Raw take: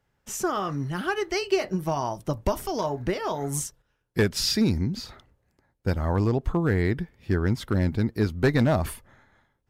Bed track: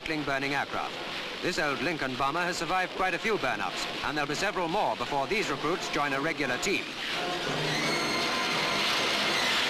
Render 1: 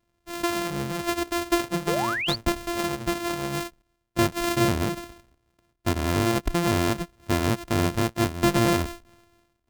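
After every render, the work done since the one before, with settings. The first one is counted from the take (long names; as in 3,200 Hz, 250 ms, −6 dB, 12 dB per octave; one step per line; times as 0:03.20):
samples sorted by size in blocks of 128 samples
0:01.87–0:02.36: sound drawn into the spectrogram rise 380–4,800 Hz −28 dBFS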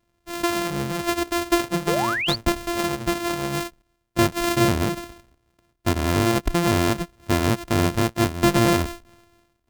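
level +3 dB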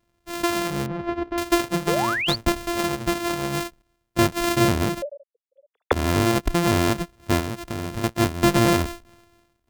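0:00.86–0:01.38: head-to-tape spacing loss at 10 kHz 43 dB
0:05.02–0:05.92: three sine waves on the formant tracks
0:07.40–0:08.04: downward compressor, threshold −25 dBFS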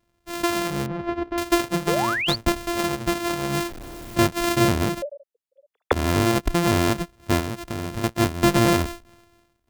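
0:03.49–0:04.18: converter with a step at zero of −31 dBFS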